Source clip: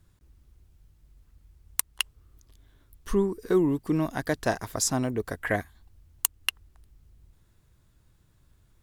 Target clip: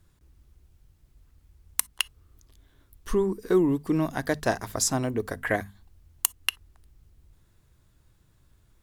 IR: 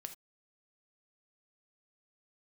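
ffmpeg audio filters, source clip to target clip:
-filter_complex "[0:a]bandreject=f=50:t=h:w=6,bandreject=f=100:t=h:w=6,bandreject=f=150:t=h:w=6,bandreject=f=200:t=h:w=6,bandreject=f=250:t=h:w=6,asplit=2[s0][s1];[1:a]atrim=start_sample=2205,asetrate=57330,aresample=44100[s2];[s1][s2]afir=irnorm=-1:irlink=0,volume=0.316[s3];[s0][s3]amix=inputs=2:normalize=0"

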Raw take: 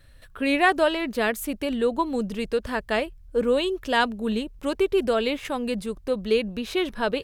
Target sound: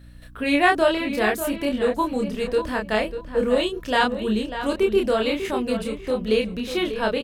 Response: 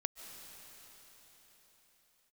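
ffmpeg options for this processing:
-filter_complex "[0:a]asplit=2[s0][s1];[s1]adelay=28,volume=0.708[s2];[s0][s2]amix=inputs=2:normalize=0,aeval=exprs='val(0)+0.00562*(sin(2*PI*60*n/s)+sin(2*PI*2*60*n/s)/2+sin(2*PI*3*60*n/s)/3+sin(2*PI*4*60*n/s)/4+sin(2*PI*5*60*n/s)/5)':c=same,asplit=2[s3][s4];[s4]adelay=594,lowpass=f=3500:p=1,volume=0.316,asplit=2[s5][s6];[s6]adelay=594,lowpass=f=3500:p=1,volume=0.22,asplit=2[s7][s8];[s8]adelay=594,lowpass=f=3500:p=1,volume=0.22[s9];[s3][s5][s7][s9]amix=inputs=4:normalize=0"

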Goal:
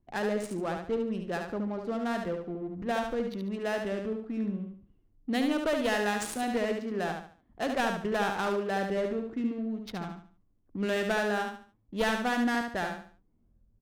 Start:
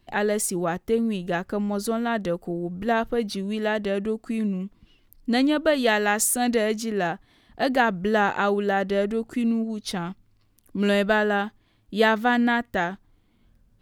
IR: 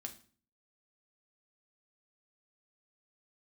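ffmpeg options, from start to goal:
-filter_complex "[0:a]aeval=exprs='clip(val(0),-1,0.112)':c=same,adynamicsmooth=sensitivity=4:basefreq=780,asplit=2[s0][s1];[s1]aecho=0:1:72|144|216|288:0.562|0.186|0.0612|0.0202[s2];[s0][s2]amix=inputs=2:normalize=0,volume=0.422"

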